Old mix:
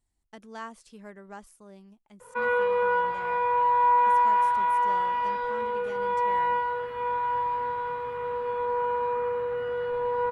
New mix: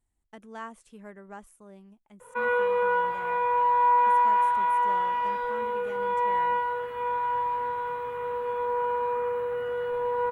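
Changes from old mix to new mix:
background: add tone controls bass -3 dB, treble +9 dB; master: add peaking EQ 4.8 kHz -11 dB 0.7 oct

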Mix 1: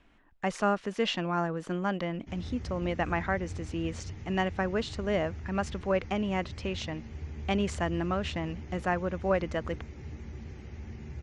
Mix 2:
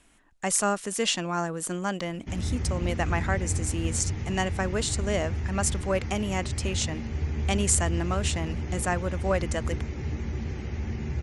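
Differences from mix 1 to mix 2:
speech: remove distance through air 240 m; background +10.5 dB

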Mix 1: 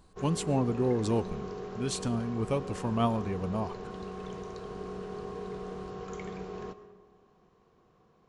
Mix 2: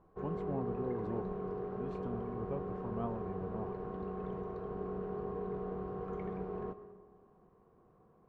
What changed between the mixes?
speech -11.5 dB; master: add low-pass 1.2 kHz 12 dB/octave

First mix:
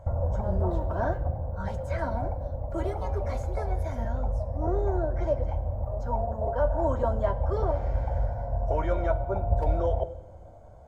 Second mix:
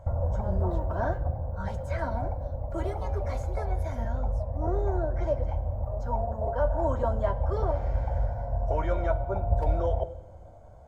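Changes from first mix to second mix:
speech: send -10.0 dB; master: add peaking EQ 360 Hz -2 dB 1.7 oct

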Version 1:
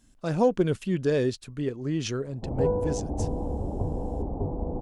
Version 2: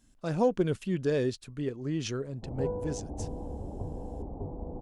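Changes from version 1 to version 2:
speech -3.5 dB; background -8.0 dB

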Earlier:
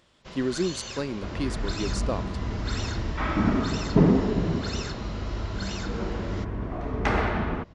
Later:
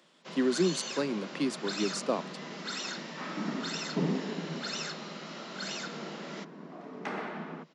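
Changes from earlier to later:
second sound -11.0 dB; master: add steep high-pass 150 Hz 96 dB/octave

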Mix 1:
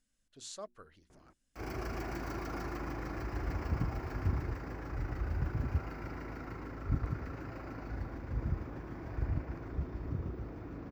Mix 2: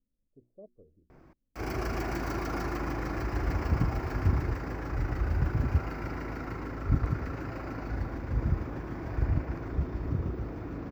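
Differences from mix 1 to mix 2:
speech: add steep low-pass 560 Hz 36 dB/octave; background +6.5 dB

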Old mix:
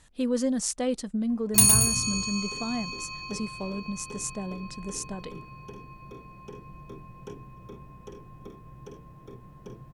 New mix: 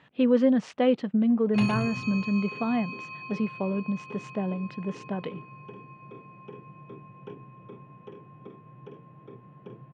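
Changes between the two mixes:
speech +6.0 dB; master: add Chebyshev band-pass 130–2900 Hz, order 3

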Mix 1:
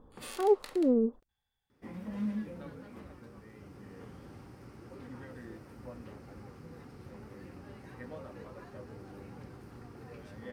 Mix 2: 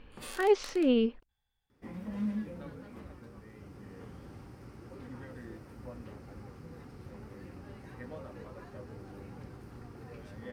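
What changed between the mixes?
speech: remove steep low-pass 1.2 kHz 36 dB/octave; master: add bass shelf 61 Hz +8.5 dB

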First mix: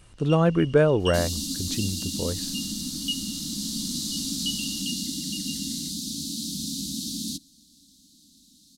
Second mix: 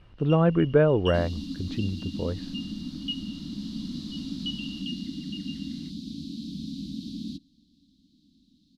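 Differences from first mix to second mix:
first sound: add treble shelf 4.8 kHz +11 dB; master: add distance through air 360 m

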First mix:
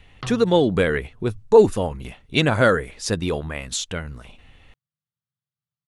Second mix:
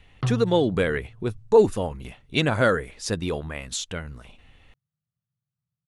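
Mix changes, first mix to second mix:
speech -3.5 dB; background: add tilt EQ -3 dB/octave

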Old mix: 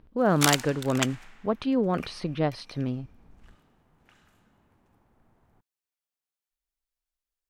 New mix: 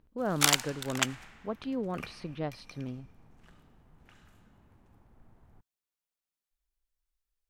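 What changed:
speech -9.0 dB; background: add bass shelf 140 Hz +9 dB

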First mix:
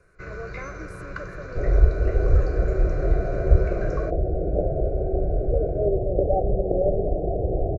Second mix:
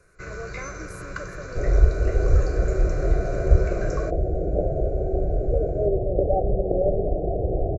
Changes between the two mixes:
speech: remove low-pass 3.8 kHz 6 dB/octave; first sound: remove distance through air 170 m

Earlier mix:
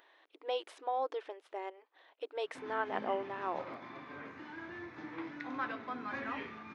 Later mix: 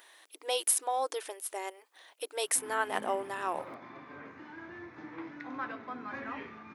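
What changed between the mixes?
speech: remove tape spacing loss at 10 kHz 41 dB; master: add peaking EQ 3.5 kHz -4 dB 1.1 oct

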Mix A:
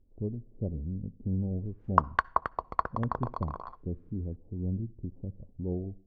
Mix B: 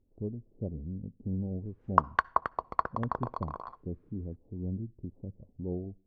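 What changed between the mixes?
speech: send -8.5 dB; master: add bass shelf 68 Hz -9.5 dB

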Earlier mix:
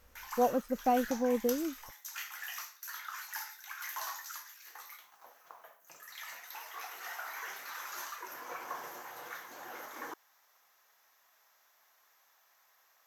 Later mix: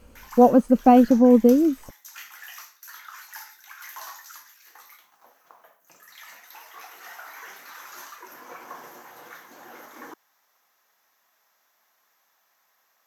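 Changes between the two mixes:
speech +11.0 dB; master: add peaking EQ 230 Hz +8 dB 1.3 oct

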